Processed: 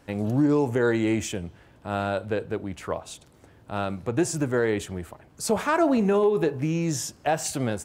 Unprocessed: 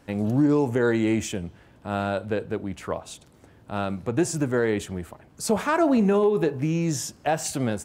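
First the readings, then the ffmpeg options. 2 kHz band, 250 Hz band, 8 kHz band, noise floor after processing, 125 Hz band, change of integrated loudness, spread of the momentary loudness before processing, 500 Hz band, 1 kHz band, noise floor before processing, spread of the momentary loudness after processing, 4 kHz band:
0.0 dB, -1.5 dB, 0.0 dB, -55 dBFS, -1.0 dB, -1.0 dB, 14 LU, -0.5 dB, 0.0 dB, -55 dBFS, 14 LU, 0.0 dB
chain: -af "equalizer=f=210:t=o:w=0.77:g=-3"

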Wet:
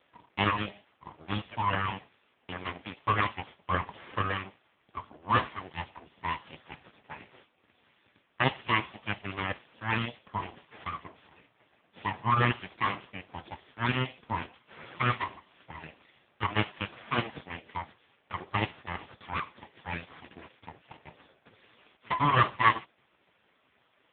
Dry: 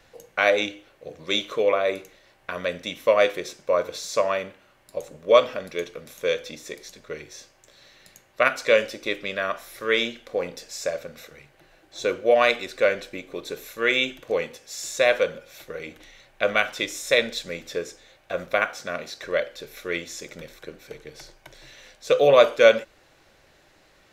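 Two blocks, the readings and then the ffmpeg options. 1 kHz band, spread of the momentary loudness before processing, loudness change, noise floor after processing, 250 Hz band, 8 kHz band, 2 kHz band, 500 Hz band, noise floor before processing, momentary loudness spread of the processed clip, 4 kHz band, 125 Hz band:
0.0 dB, 20 LU, -8.0 dB, -70 dBFS, -2.0 dB, under -40 dB, -7.0 dB, -19.5 dB, -59 dBFS, 21 LU, -9.0 dB, +10.0 dB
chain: -af "aeval=exprs='abs(val(0))':c=same" -ar 8000 -c:a libopencore_amrnb -b:a 5150

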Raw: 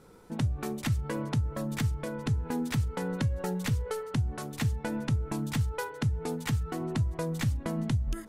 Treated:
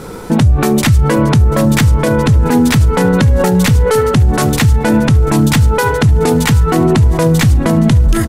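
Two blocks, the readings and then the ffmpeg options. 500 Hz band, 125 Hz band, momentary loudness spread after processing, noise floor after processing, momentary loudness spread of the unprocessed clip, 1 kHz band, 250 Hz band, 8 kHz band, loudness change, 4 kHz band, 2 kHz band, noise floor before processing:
+23.0 dB, +19.5 dB, 1 LU, -16 dBFS, 2 LU, +22.5 dB, +21.5 dB, +21.5 dB, +21.0 dB, +20.5 dB, +21.0 dB, -45 dBFS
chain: -filter_complex "[0:a]asplit=2[s0][s1];[s1]aecho=0:1:739|1478|2217|2956:0.126|0.0592|0.0278|0.0131[s2];[s0][s2]amix=inputs=2:normalize=0,alimiter=level_in=29.9:limit=0.891:release=50:level=0:latency=1,volume=0.794"

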